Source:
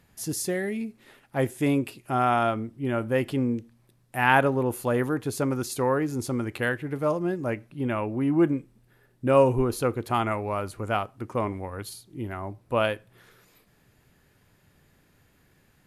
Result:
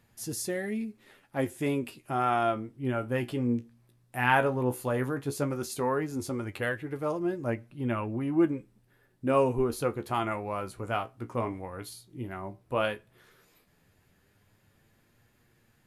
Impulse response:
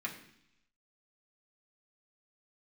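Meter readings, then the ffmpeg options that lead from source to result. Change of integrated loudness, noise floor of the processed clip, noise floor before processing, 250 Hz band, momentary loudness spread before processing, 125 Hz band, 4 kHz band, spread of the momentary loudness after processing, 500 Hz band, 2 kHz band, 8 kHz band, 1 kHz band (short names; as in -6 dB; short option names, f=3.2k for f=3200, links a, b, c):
-4.0 dB, -67 dBFS, -63 dBFS, -4.0 dB, 13 LU, -4.5 dB, -4.0 dB, 12 LU, -4.5 dB, -4.0 dB, -4.0 dB, -4.0 dB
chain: -af "flanger=delay=8.5:depth=8.4:regen=44:speed=0.13:shape=sinusoidal"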